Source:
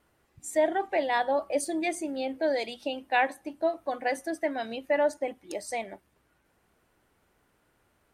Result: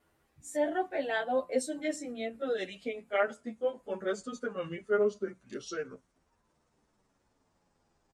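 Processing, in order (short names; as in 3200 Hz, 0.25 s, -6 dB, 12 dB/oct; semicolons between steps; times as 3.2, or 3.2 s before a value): gliding pitch shift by -9.5 st starting unshifted; endless flanger 9.3 ms -0.64 Hz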